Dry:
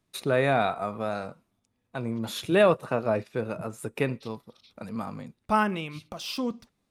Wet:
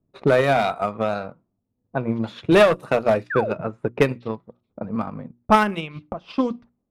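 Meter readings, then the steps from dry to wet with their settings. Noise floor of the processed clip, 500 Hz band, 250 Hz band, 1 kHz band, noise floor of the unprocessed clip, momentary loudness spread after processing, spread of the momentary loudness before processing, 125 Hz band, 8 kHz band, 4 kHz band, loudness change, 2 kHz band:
−76 dBFS, +6.5 dB, +6.5 dB, +6.5 dB, −77 dBFS, 16 LU, 18 LU, +5.0 dB, can't be measured, +3.5 dB, +6.5 dB, +6.0 dB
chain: mains-hum notches 60/120/180/240/300/360 Hz
low-pass that shuts in the quiet parts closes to 460 Hz, open at −23 dBFS
asymmetric clip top −20 dBFS
transient designer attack +6 dB, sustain −6 dB
sound drawn into the spectrogram fall, 0:03.30–0:03.53, 360–1,900 Hz −32 dBFS
level +6 dB

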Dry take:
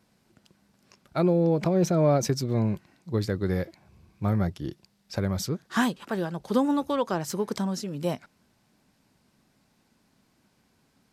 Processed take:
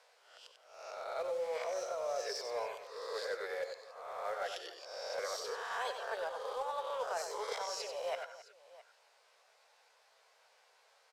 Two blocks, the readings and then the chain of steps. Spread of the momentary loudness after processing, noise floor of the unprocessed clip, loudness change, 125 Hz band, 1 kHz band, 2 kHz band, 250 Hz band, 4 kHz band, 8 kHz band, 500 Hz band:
13 LU, −68 dBFS, −12.5 dB, below −40 dB, −6.0 dB, −5.0 dB, below −35 dB, −4.5 dB, −8.5 dB, −9.5 dB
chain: peak hold with a rise ahead of every peak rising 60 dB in 0.74 s
de-essing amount 75%
reverb reduction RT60 0.64 s
Butterworth high-pass 460 Hz 72 dB per octave
reversed playback
downward compressor 10 to 1, threshold −39 dBFS, peak gain reduction 18 dB
reversed playback
floating-point word with a short mantissa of 2 bits
high-frequency loss of the air 52 metres
on a send: multi-tap delay 94/168/269/664 ms −7.5/−18.5/−17.5/−19.5 dB
on the sum: level +3.5 dB

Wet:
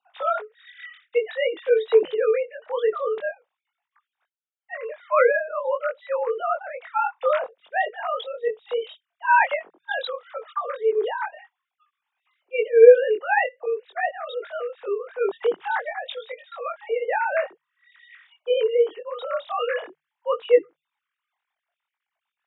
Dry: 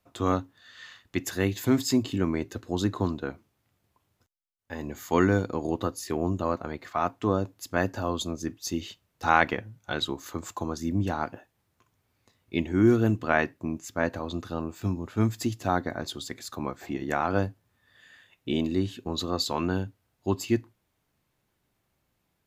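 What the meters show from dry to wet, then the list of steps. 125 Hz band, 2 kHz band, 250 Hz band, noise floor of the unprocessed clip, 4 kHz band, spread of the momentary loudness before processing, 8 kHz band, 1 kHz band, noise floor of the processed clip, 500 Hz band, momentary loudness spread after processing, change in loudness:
below −40 dB, +6.0 dB, below −20 dB, −76 dBFS, −2.5 dB, 12 LU, below −40 dB, +5.5 dB, below −85 dBFS, +11.0 dB, 15 LU, +5.5 dB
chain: three sine waves on the formant tracks
frequency shifter +150 Hz
chorus effect 0.49 Hz, delay 20 ms, depth 3.2 ms
level +7.5 dB

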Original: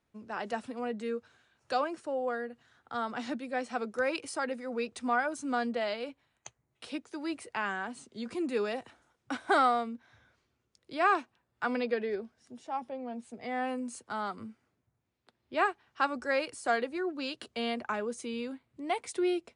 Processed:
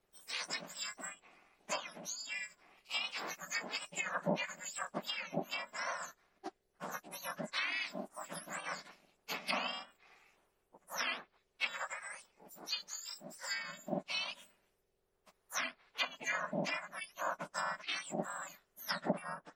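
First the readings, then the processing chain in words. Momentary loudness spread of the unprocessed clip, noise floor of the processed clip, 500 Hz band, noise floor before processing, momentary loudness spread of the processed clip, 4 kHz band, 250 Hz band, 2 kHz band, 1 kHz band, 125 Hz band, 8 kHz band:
12 LU, −79 dBFS, −11.5 dB, −80 dBFS, 11 LU, +3.0 dB, −11.5 dB, −3.5 dB, −10.5 dB, can't be measured, +4.0 dB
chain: frequency axis turned over on the octave scale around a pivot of 1,900 Hz
treble cut that deepens with the level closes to 1,500 Hz, closed at −31.5 dBFS
ring modulation 200 Hz
level +6.5 dB

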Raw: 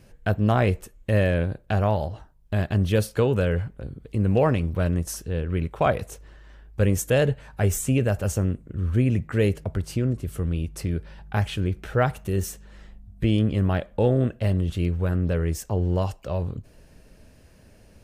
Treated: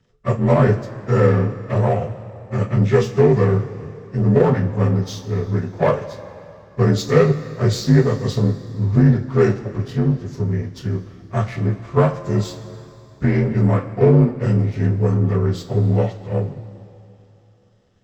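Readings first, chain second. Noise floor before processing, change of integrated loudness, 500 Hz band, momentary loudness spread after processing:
−53 dBFS, +6.0 dB, +6.5 dB, 11 LU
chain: partials spread apart or drawn together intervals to 84%
power curve on the samples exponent 1.4
coupled-rooms reverb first 0.23 s, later 2.9 s, from −18 dB, DRR 2 dB
level +7.5 dB

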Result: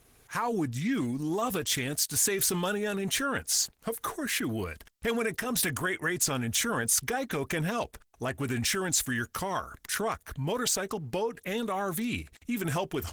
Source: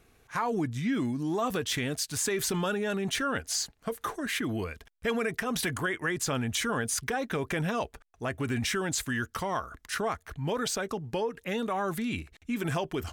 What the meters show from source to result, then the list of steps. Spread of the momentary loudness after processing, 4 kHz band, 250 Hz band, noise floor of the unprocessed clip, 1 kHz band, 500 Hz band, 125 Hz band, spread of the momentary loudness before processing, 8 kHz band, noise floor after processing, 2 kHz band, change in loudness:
8 LU, +1.5 dB, −0.5 dB, −65 dBFS, −0.5 dB, −0.5 dB, −0.5 dB, 6 LU, +5.0 dB, −65 dBFS, 0.0 dB, +1.5 dB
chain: camcorder AGC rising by 9.1 dB per second
high-shelf EQ 6,200 Hz +11.5 dB
Opus 16 kbit/s 48,000 Hz

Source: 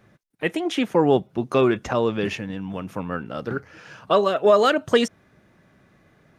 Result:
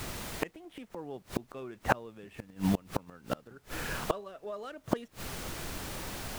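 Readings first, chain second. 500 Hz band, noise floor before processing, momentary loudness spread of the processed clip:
−18.5 dB, −59 dBFS, 12 LU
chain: running median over 9 samples
background noise pink −45 dBFS
gate with flip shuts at −20 dBFS, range −30 dB
level +5.5 dB

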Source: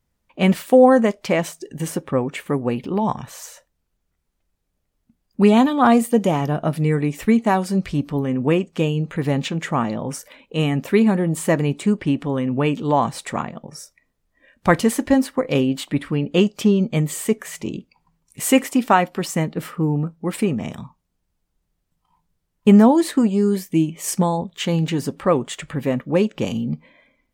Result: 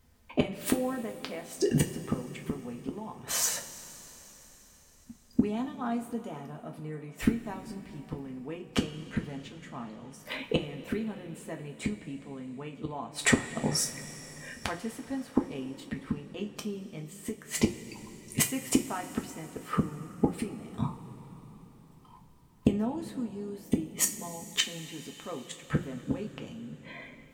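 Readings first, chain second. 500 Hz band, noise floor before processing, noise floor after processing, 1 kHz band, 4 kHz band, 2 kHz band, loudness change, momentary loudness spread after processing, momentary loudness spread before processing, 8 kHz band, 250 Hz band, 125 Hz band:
−16.5 dB, −73 dBFS, −57 dBFS, −18.0 dB, −5.5 dB, −9.5 dB, −13.5 dB, 15 LU, 14 LU, −2.5 dB, −14.0 dB, −14.0 dB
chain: gate with flip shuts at −19 dBFS, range −30 dB
coupled-rooms reverb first 0.24 s, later 4.6 s, from −20 dB, DRR 2.5 dB
level +7.5 dB

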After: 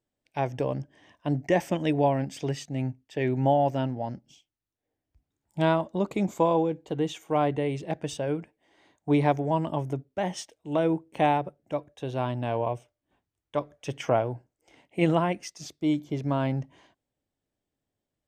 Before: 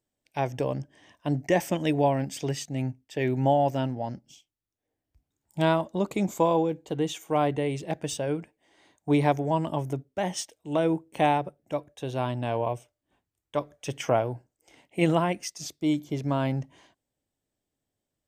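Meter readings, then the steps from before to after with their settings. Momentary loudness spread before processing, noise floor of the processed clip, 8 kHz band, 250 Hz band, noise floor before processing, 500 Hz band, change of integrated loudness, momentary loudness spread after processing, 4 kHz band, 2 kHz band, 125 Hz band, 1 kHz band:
11 LU, below −85 dBFS, −6.0 dB, 0.0 dB, below −85 dBFS, 0.0 dB, 0.0 dB, 12 LU, −2.5 dB, −1.0 dB, 0.0 dB, 0.0 dB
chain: low-pass filter 3,800 Hz 6 dB per octave

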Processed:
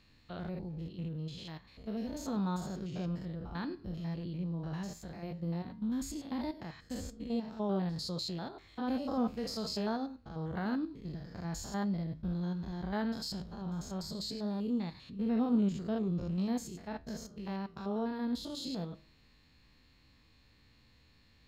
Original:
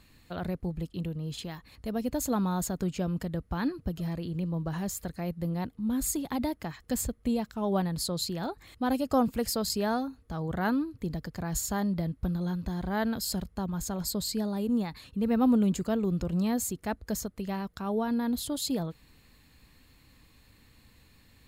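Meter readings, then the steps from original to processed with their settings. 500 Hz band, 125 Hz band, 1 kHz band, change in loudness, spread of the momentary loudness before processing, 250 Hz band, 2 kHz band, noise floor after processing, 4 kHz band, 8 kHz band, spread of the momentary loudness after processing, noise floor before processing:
−7.0 dB, −5.0 dB, −7.5 dB, −6.0 dB, 8 LU, −5.5 dB, −8.0 dB, −65 dBFS, −5.0 dB, −14.0 dB, 9 LU, −61 dBFS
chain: spectrum averaged block by block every 100 ms
flanger 0.13 Hz, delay 9.6 ms, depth 7.4 ms, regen −75%
high shelf with overshoot 7,200 Hz −12 dB, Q 1.5

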